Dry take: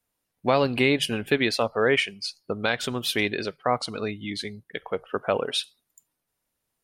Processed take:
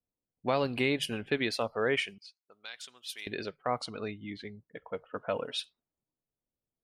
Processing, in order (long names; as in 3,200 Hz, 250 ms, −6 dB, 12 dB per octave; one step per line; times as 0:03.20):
low-pass that shuts in the quiet parts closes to 530 Hz, open at −21.5 dBFS
0:02.18–0:03.27: first difference
0:04.67–0:05.59: notch comb filter 390 Hz
level −7.5 dB